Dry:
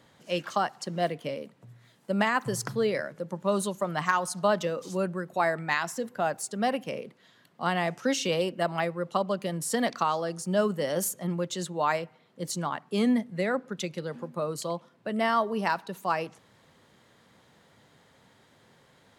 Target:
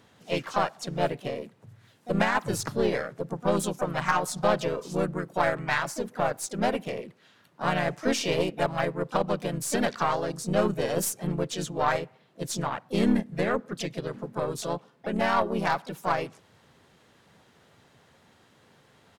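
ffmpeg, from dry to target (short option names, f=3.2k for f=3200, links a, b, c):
-filter_complex "[0:a]asplit=3[a][b][c];[b]asetrate=37084,aresample=44100,atempo=1.18921,volume=-2dB[d];[c]asetrate=55563,aresample=44100,atempo=0.793701,volume=-10dB[e];[a][d][e]amix=inputs=3:normalize=0,aeval=exprs='0.501*(cos(1*acos(clip(val(0)/0.501,-1,1)))-cos(1*PI/2))+0.0251*(cos(8*acos(clip(val(0)/0.501,-1,1)))-cos(8*PI/2))':c=same,volume=-1.5dB"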